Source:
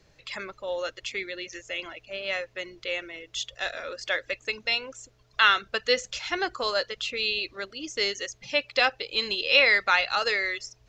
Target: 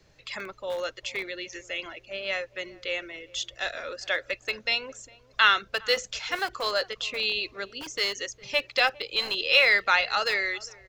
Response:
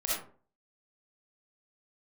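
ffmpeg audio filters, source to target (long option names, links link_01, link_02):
-filter_complex "[0:a]acrossover=split=370|680[link_01][link_02][link_03];[link_01]aeval=exprs='(mod(84.1*val(0)+1,2)-1)/84.1':channel_layout=same[link_04];[link_04][link_02][link_03]amix=inputs=3:normalize=0,asplit=2[link_05][link_06];[link_06]adelay=406,lowpass=frequency=1000:poles=1,volume=-20dB,asplit=2[link_07][link_08];[link_08]adelay=406,lowpass=frequency=1000:poles=1,volume=0.4,asplit=2[link_09][link_10];[link_10]adelay=406,lowpass=frequency=1000:poles=1,volume=0.4[link_11];[link_05][link_07][link_09][link_11]amix=inputs=4:normalize=0"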